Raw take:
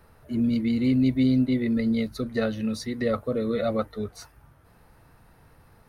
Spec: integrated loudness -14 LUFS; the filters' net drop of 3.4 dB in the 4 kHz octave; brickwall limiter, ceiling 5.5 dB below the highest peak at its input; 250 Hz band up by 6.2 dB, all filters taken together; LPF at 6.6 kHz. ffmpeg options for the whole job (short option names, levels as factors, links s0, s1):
-af "lowpass=6600,equalizer=f=250:t=o:g=6.5,equalizer=f=4000:t=o:g=-3.5,volume=2.51,alimiter=limit=0.531:level=0:latency=1"